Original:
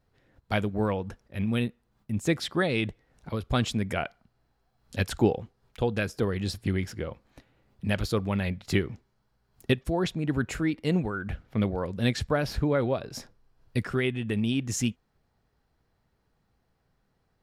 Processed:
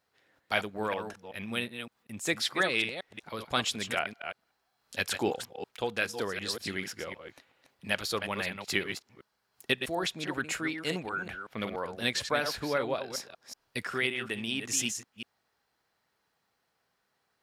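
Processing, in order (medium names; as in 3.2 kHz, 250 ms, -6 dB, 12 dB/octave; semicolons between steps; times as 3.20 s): chunks repeated in reverse 188 ms, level -7.5 dB; high-pass 1.2 kHz 6 dB/octave; trim +3.5 dB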